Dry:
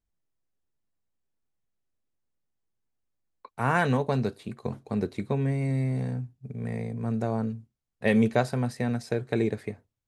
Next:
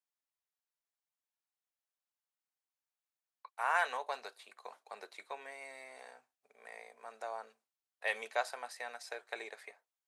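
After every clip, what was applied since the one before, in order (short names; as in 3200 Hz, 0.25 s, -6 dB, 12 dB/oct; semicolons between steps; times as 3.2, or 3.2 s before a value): HPF 700 Hz 24 dB/oct; gain -4.5 dB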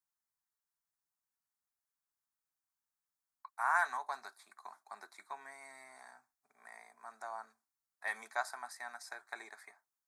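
fixed phaser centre 1200 Hz, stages 4; gain +2 dB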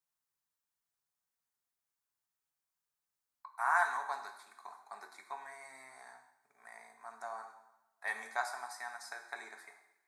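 two-slope reverb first 0.88 s, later 2.5 s, from -27 dB, DRR 4.5 dB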